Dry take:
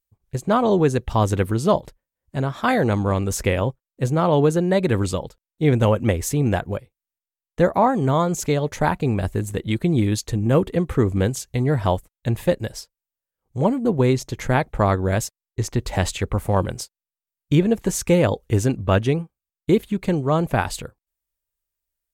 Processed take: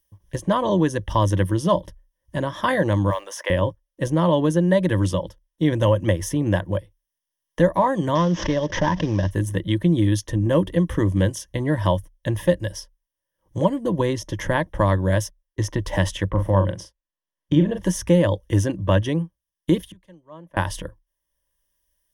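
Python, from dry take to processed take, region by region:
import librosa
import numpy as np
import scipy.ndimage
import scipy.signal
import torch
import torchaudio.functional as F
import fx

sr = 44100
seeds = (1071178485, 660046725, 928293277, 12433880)

y = fx.chain(x, sr, fx.highpass(hz=600.0, slope=24),
    fx.high_shelf(hz=6000.0, db=-9.0),
    fx.mod_noise(seeds[0], snr_db=33), at=(3.1, 3.5))
y = fx.chain(y, sr, fx.cvsd(bps=32000),
    fx.pre_swell(db_per_s=130.0), at=(8.15, 9.31))
y = fx.chain(y, sr, fx.lowpass(hz=1900.0, slope=6),
    fx.doubler(ms=41.0, db=-7.0), at=(16.3, 17.83))
y = fx.chain(y, sr, fx.gate_flip(shuts_db=-26.0, range_db=-25),
    fx.low_shelf(hz=370.0, db=-8.0),
    fx.band_widen(depth_pct=70), at=(19.82, 20.57))
y = fx.ripple_eq(y, sr, per_octave=1.2, db=13)
y = fx.band_squash(y, sr, depth_pct=40)
y = F.gain(torch.from_numpy(y), -3.0).numpy()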